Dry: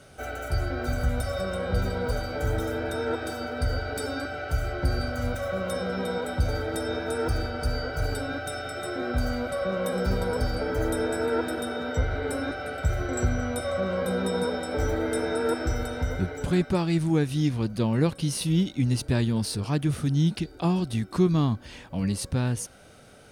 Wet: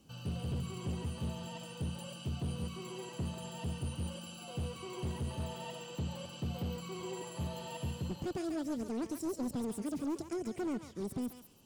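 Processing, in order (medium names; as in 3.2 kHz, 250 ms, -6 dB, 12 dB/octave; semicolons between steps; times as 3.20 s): amplifier tone stack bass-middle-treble 6-0-2; hard clipper -38.5 dBFS, distortion -10 dB; distance through air 110 m; thinning echo 278 ms, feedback 31%, high-pass 740 Hz, level -3.5 dB; speed mistake 7.5 ips tape played at 15 ips; trim +6 dB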